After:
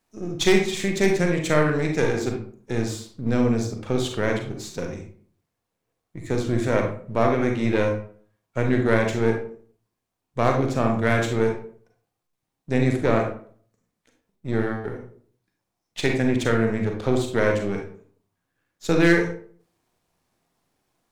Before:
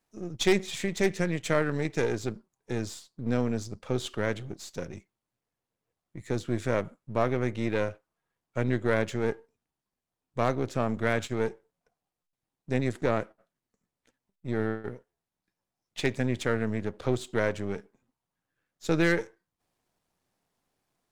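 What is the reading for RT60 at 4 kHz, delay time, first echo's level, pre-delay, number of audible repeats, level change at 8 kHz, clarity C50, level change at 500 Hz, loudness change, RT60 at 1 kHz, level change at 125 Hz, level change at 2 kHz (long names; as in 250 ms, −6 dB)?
0.30 s, no echo audible, no echo audible, 35 ms, no echo audible, +6.0 dB, 5.0 dB, +6.5 dB, +6.5 dB, 0.45 s, +7.0 dB, +6.5 dB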